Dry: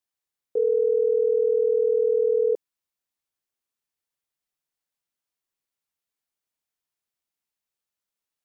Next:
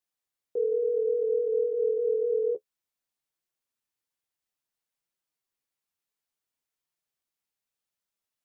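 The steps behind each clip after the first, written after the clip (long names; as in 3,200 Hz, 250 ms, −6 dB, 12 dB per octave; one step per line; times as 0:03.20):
in parallel at +2 dB: brickwall limiter −26 dBFS, peak gain reduction 11 dB
on the sum: flanger 0.58 Hz, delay 5.3 ms, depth 7.7 ms, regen −27%
level −4.5 dB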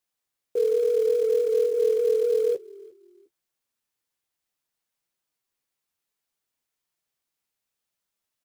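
in parallel at −4 dB: floating-point word with a short mantissa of 2 bits
on the sum: echo with shifted repeats 354 ms, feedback 31%, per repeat −41 Hz, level −23.5 dB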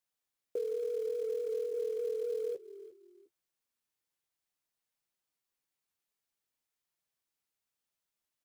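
downward compressor 5 to 1, threshold −28 dBFS, peak gain reduction 9.5 dB
level −5 dB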